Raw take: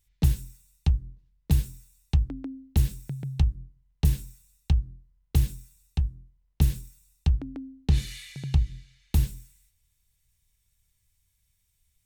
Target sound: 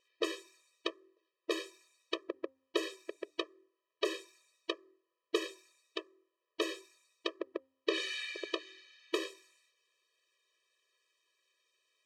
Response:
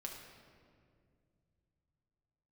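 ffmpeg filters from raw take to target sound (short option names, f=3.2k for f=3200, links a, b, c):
-af "aeval=exprs='0.355*(cos(1*acos(clip(val(0)/0.355,-1,1)))-cos(1*PI/2))+0.00708*(cos(8*acos(clip(val(0)/0.355,-1,1)))-cos(8*PI/2))':c=same,highpass=230,lowpass=3.3k,afftfilt=real='re*eq(mod(floor(b*sr/1024/330),2),1)':imag='im*eq(mod(floor(b*sr/1024/330),2),1)':win_size=1024:overlap=0.75,volume=11.5dB"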